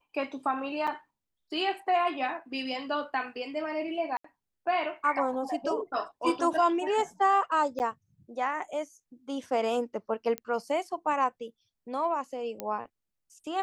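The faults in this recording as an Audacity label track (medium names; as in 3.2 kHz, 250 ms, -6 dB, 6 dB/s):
0.870000	0.880000	dropout 5.4 ms
4.170000	4.240000	dropout 74 ms
7.790000	7.800000	dropout 9.4 ms
10.380000	10.380000	pop -18 dBFS
12.600000	12.600000	pop -17 dBFS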